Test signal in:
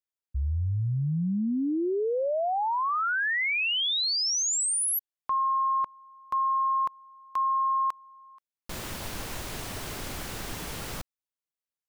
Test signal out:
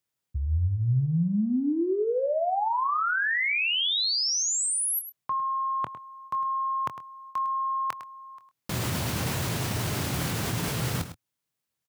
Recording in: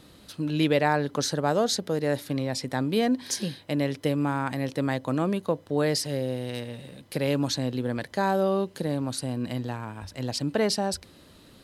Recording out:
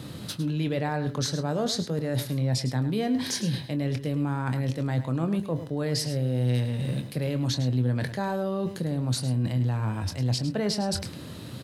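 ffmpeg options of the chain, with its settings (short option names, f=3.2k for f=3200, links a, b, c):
-filter_complex "[0:a]highpass=92,acrossover=split=4700[a][b];[b]acompressor=threshold=-33dB:ratio=4:attack=1:release=60[c];[a][c]amix=inputs=2:normalize=0,equalizer=f=120:t=o:w=1.3:g=12.5,areverse,acompressor=threshold=-35dB:ratio=5:attack=7.9:release=83:knee=1:detection=rms,areverse,asplit=2[d][e];[e]adelay=24,volume=-10.5dB[f];[d][f]amix=inputs=2:normalize=0,aecho=1:1:105:0.251,volume=8.5dB"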